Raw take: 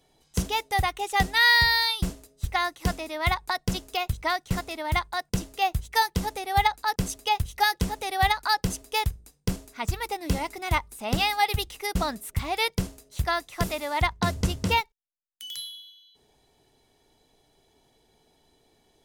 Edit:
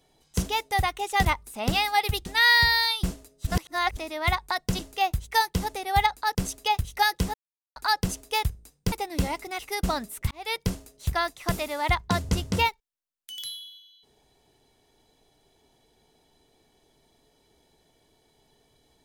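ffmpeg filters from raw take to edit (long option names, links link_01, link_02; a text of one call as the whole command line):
ffmpeg -i in.wav -filter_complex "[0:a]asplit=11[link_01][link_02][link_03][link_04][link_05][link_06][link_07][link_08][link_09][link_10][link_11];[link_01]atrim=end=1.252[link_12];[link_02]atrim=start=10.698:end=11.712[link_13];[link_03]atrim=start=1.248:end=2.462[link_14];[link_04]atrim=start=2.458:end=2.962,asetpts=PTS-STARTPTS,areverse[link_15];[link_05]atrim=start=2.958:end=3.782[link_16];[link_06]atrim=start=5.398:end=7.95,asetpts=PTS-STARTPTS,afade=type=out:start_time=2.548:duration=0.004:curve=hsin[link_17];[link_07]atrim=start=7.95:end=8.37,asetpts=PTS-STARTPTS,volume=0[link_18];[link_08]atrim=start=8.37:end=9.532,asetpts=PTS-STARTPTS,afade=type=in:duration=0.004:curve=hsin[link_19];[link_09]atrim=start=10.028:end=10.702[link_20];[link_10]atrim=start=11.708:end=12.43,asetpts=PTS-STARTPTS,afade=type=out:start_time=0.718:duration=0.004:curve=hsin[link_21];[link_11]atrim=start=12.43,asetpts=PTS-STARTPTS,afade=type=in:duration=0.34[link_22];[link_12][link_13]acrossfade=duration=0.004:curve1=hsin:curve2=hsin[link_23];[link_23][link_14]acrossfade=duration=0.004:curve1=hsin:curve2=hsin[link_24];[link_24][link_15]acrossfade=duration=0.004:curve1=hsin:curve2=hsin[link_25];[link_25][link_16]acrossfade=duration=0.004:curve1=hsin:curve2=hsin[link_26];[link_17][link_18][link_19]concat=n=3:v=0:a=1[link_27];[link_26][link_27]acrossfade=duration=0.004:curve1=hsin:curve2=hsin[link_28];[link_28][link_20]acrossfade=duration=0.004:curve1=hsin:curve2=hsin[link_29];[link_21][link_22]concat=n=2:v=0:a=1[link_30];[link_29][link_30]acrossfade=duration=0.004:curve1=hsin:curve2=hsin" out.wav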